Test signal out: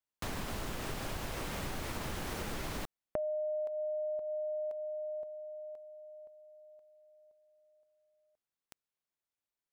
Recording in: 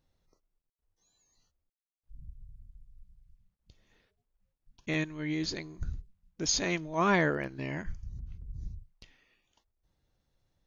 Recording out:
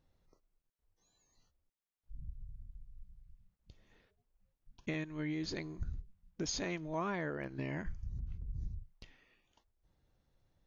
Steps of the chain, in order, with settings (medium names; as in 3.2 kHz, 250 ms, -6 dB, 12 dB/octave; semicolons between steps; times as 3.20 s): treble shelf 3.1 kHz -7 dB; compression 8:1, threshold -36 dBFS; trim +1.5 dB